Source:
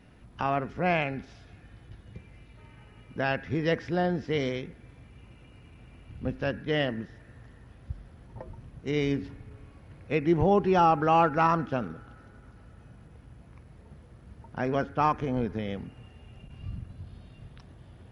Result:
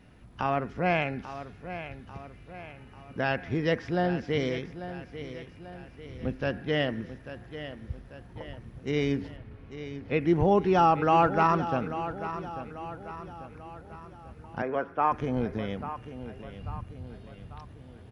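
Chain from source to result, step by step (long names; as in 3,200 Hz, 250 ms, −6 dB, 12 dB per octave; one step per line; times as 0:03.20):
0:09.36–0:10.21: low-pass filter 4,400 Hz 24 dB per octave
0:14.62–0:15.12: three-way crossover with the lows and the highs turned down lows −15 dB, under 310 Hz, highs −22 dB, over 2,600 Hz
repeating echo 842 ms, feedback 49%, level −12 dB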